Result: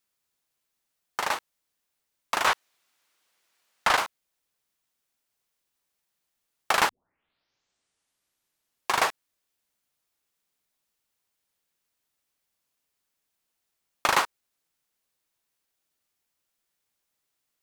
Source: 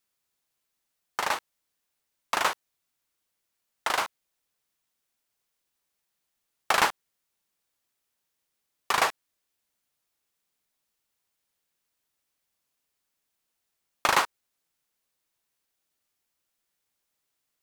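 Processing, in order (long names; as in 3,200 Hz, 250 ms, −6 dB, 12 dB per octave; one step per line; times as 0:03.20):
0:02.47–0:03.97: mid-hump overdrive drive 19 dB, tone 3,900 Hz, clips at −11 dBFS
0:06.89: tape start 2.18 s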